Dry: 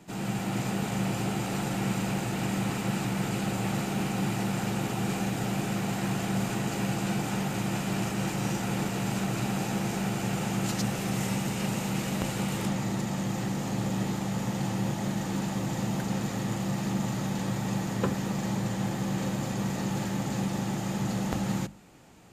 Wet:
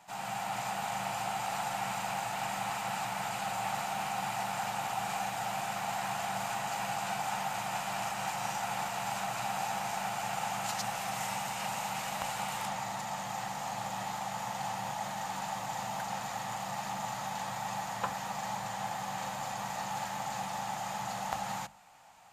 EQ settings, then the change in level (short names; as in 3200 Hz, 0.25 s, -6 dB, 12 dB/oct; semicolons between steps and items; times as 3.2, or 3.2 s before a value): resonant low shelf 540 Hz -13 dB, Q 3; -2.5 dB